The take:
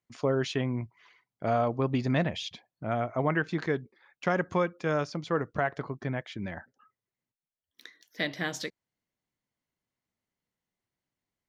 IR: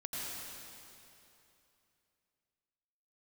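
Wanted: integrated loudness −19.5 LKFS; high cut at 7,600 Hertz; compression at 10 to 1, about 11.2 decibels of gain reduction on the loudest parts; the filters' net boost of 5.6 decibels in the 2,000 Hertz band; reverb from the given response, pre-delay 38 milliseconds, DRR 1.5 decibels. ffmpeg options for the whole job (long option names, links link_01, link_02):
-filter_complex "[0:a]lowpass=7600,equalizer=frequency=2000:width_type=o:gain=7,acompressor=threshold=-32dB:ratio=10,asplit=2[link_01][link_02];[1:a]atrim=start_sample=2205,adelay=38[link_03];[link_02][link_03]afir=irnorm=-1:irlink=0,volume=-3.5dB[link_04];[link_01][link_04]amix=inputs=2:normalize=0,volume=16.5dB"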